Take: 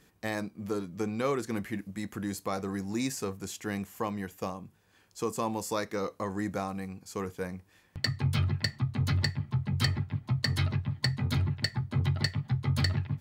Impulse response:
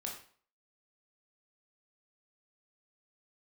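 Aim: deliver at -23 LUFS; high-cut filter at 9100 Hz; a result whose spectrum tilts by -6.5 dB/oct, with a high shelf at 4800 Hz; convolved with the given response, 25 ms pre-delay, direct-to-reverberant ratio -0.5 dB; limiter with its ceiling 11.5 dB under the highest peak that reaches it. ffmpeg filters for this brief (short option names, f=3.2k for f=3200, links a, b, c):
-filter_complex "[0:a]lowpass=9.1k,highshelf=f=4.8k:g=-8.5,alimiter=level_in=3.5dB:limit=-24dB:level=0:latency=1,volume=-3.5dB,asplit=2[a][b];[1:a]atrim=start_sample=2205,adelay=25[c];[b][c]afir=irnorm=-1:irlink=0,volume=1dB[d];[a][d]amix=inputs=2:normalize=0,volume=11.5dB"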